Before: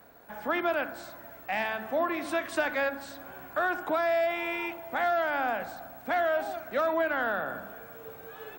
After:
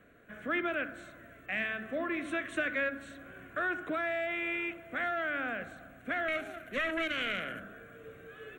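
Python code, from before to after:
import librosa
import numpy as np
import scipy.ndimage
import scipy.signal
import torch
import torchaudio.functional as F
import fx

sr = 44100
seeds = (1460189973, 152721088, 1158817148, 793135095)

y = fx.self_delay(x, sr, depth_ms=0.28, at=(6.28, 7.62))
y = scipy.signal.sosfilt(scipy.signal.butter(2, 7700.0, 'lowpass', fs=sr, output='sos'), y)
y = fx.fixed_phaser(y, sr, hz=2100.0, stages=4)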